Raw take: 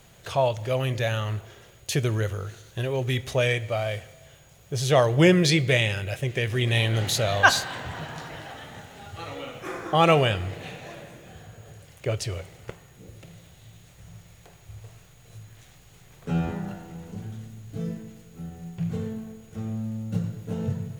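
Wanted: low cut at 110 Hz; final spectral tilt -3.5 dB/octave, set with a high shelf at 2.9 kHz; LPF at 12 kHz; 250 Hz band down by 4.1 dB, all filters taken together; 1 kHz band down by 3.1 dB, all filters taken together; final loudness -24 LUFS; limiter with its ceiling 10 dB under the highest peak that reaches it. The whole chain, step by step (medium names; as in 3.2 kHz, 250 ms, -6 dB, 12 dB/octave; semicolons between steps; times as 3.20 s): high-pass 110 Hz; low-pass 12 kHz; peaking EQ 250 Hz -6.5 dB; peaking EQ 1 kHz -5 dB; treble shelf 2.9 kHz +8.5 dB; trim +4 dB; peak limiter -8.5 dBFS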